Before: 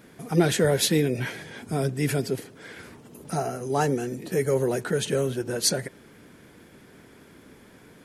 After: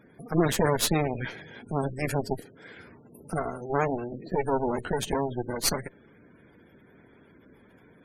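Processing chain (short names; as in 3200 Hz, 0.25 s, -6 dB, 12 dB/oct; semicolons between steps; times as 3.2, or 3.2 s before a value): added harmonics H 2 -12 dB, 6 -12 dB, 7 -44 dB, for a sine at -8.5 dBFS; spectral gate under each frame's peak -20 dB strong; gain -4 dB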